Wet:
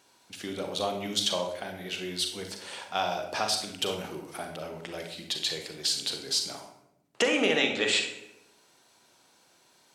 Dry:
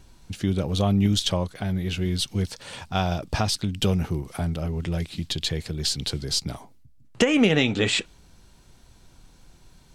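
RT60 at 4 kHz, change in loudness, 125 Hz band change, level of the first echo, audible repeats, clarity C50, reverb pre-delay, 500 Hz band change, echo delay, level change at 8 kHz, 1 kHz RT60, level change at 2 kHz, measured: 0.60 s, -4.5 dB, -21.0 dB, no echo, no echo, 6.0 dB, 38 ms, -3.0 dB, no echo, -1.5 dB, 0.70 s, -1.0 dB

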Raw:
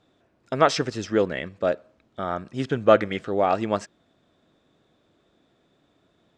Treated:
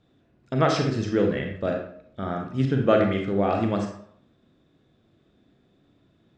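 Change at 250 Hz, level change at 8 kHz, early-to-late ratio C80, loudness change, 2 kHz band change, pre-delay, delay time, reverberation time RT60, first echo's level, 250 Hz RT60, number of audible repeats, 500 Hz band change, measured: +3.5 dB, no reading, 8.5 dB, -0.5 dB, -2.0 dB, 29 ms, no echo, 0.65 s, no echo, 0.60 s, no echo, -2.0 dB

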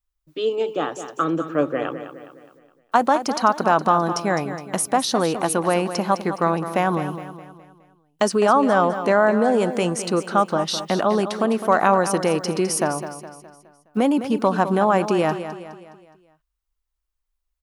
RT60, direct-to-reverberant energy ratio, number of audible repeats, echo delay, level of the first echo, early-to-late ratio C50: no reverb, no reverb, 4, 208 ms, -11.0 dB, no reverb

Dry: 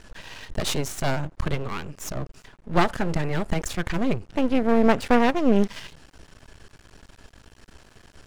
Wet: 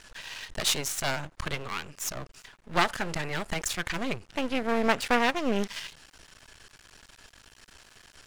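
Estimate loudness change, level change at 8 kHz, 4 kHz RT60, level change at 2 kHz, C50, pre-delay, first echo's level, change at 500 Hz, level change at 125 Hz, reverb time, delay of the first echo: -4.5 dB, +3.5 dB, no reverb, +1.0 dB, no reverb, no reverb, no echo, -6.5 dB, -10.0 dB, no reverb, no echo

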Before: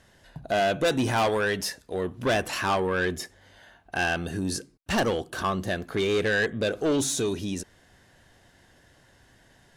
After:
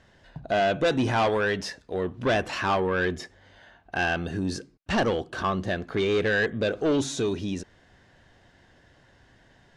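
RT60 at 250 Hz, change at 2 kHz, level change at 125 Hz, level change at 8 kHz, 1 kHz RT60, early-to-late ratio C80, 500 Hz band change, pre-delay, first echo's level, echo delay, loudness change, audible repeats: no reverb, 0.0 dB, +1.0 dB, -7.5 dB, no reverb, no reverb, +0.5 dB, no reverb, no echo, no echo, +0.5 dB, no echo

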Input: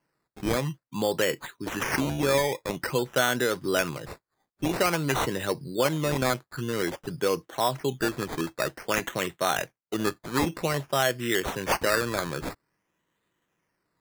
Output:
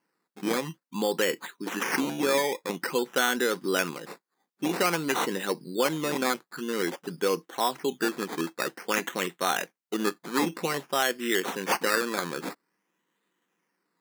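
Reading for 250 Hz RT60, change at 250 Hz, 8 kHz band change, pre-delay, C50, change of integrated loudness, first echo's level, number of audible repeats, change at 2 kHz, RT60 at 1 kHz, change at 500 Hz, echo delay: no reverb, -0.5 dB, 0.0 dB, no reverb, no reverb, -1.0 dB, no echo, no echo, 0.0 dB, no reverb, -1.5 dB, no echo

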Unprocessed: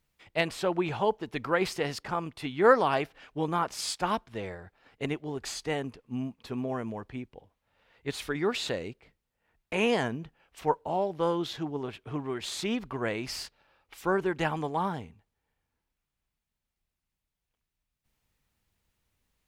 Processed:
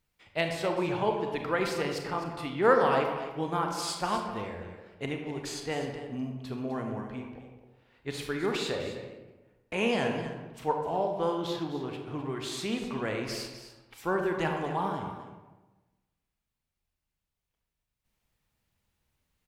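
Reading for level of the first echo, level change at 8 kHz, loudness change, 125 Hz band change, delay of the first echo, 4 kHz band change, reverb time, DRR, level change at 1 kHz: -12.0 dB, -1.5 dB, -0.5 dB, 0.0 dB, 255 ms, -1.0 dB, 1.1 s, 2.5 dB, -0.5 dB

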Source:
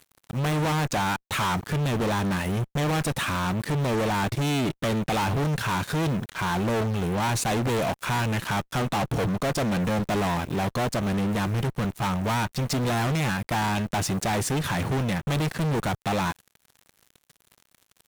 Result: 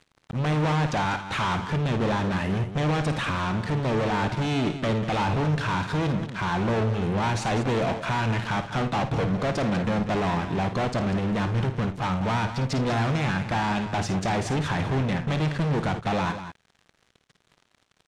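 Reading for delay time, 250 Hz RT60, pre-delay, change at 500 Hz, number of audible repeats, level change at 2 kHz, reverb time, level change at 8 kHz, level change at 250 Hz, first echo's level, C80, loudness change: 53 ms, no reverb, no reverb, +0.5 dB, 2, 0.0 dB, no reverb, -8.0 dB, +0.5 dB, -10.0 dB, no reverb, 0.0 dB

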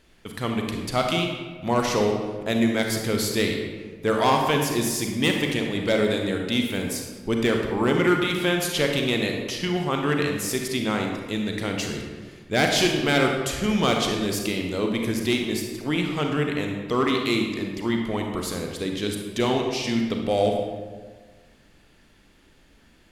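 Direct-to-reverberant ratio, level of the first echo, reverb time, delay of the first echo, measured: 2.0 dB, no echo, 1.5 s, no echo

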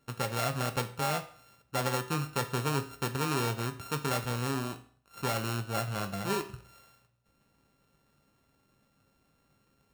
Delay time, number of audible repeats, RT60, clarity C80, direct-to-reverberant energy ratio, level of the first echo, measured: no echo, no echo, 0.50 s, 17.0 dB, 6.0 dB, no echo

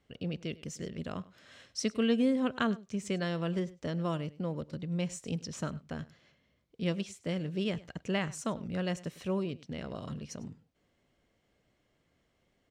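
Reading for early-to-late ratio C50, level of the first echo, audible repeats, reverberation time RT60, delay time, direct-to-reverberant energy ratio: no reverb, -20.0 dB, 1, no reverb, 101 ms, no reverb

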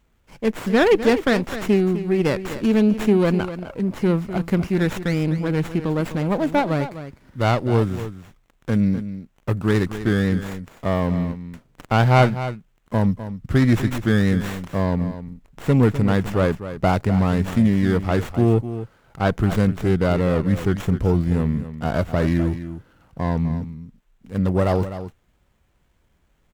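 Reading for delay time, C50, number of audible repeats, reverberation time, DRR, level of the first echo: 253 ms, no reverb, 1, no reverb, no reverb, -12.0 dB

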